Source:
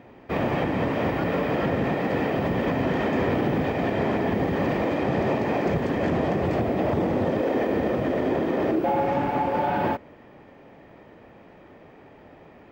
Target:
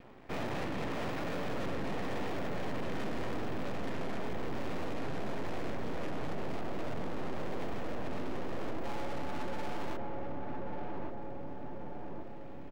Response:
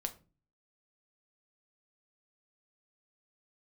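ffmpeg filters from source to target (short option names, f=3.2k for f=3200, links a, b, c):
-filter_complex "[0:a]aeval=exprs='max(val(0),0)':c=same,asplit=2[a][b];[b]adelay=1139,lowpass=f=920:p=1,volume=-5.5dB,asplit=2[c][d];[d]adelay=1139,lowpass=f=920:p=1,volume=0.53,asplit=2[e][f];[f]adelay=1139,lowpass=f=920:p=1,volume=0.53,asplit=2[g][h];[h]adelay=1139,lowpass=f=920:p=1,volume=0.53,asplit=2[i][j];[j]adelay=1139,lowpass=f=920:p=1,volume=0.53,asplit=2[k][l];[l]adelay=1139,lowpass=f=920:p=1,volume=0.53,asplit=2[m][n];[n]adelay=1139,lowpass=f=920:p=1,volume=0.53[o];[a][c][e][g][i][k][m][o]amix=inputs=8:normalize=0,asoftclip=type=tanh:threshold=-26.5dB,volume=-2dB"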